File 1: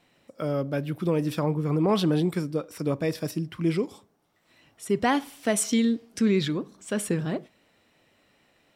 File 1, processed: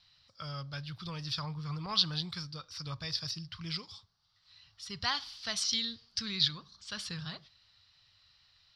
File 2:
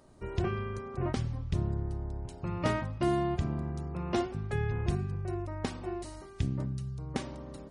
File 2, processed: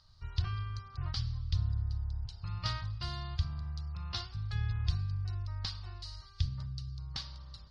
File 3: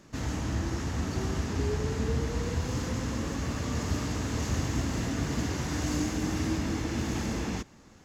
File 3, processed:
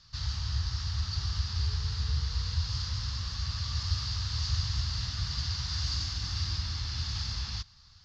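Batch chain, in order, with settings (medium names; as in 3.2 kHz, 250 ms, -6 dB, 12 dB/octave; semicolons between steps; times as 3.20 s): FFT filter 100 Hz 0 dB, 280 Hz -30 dB, 400 Hz -29 dB, 600 Hz -23 dB, 1.2 kHz -6 dB, 2.3 kHz -10 dB, 4.7 kHz +12 dB, 7.6 kHz -17 dB, 14 kHz -26 dB; trim +1.5 dB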